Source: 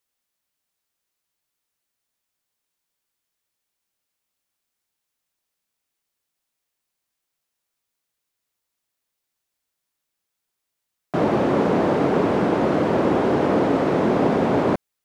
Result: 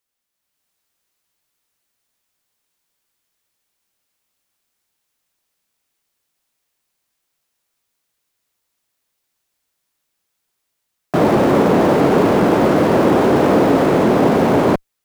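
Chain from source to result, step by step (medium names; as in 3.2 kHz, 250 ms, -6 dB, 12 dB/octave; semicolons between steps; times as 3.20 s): in parallel at -8.5 dB: Schmitt trigger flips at -36 dBFS; on the sum: level rider gain up to 7 dB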